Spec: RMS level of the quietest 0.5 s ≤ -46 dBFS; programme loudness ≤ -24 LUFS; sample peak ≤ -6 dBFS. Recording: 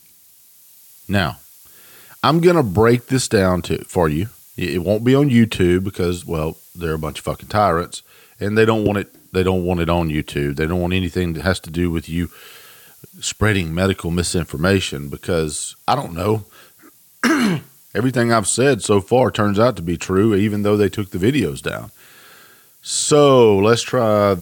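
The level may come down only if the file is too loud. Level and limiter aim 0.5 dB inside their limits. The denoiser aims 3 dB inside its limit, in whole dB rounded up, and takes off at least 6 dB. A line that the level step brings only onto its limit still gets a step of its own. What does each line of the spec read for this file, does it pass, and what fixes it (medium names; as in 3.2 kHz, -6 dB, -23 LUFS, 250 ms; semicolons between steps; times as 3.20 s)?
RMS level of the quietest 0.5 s -49 dBFS: pass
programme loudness -18.0 LUFS: fail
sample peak -2.0 dBFS: fail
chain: trim -6.5 dB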